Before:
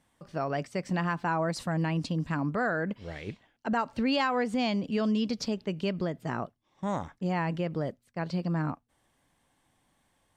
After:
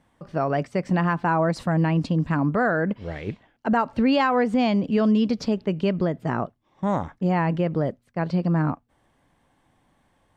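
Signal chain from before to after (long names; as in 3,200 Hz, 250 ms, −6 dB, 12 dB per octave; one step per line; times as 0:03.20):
high-shelf EQ 3,100 Hz −12 dB
level +8 dB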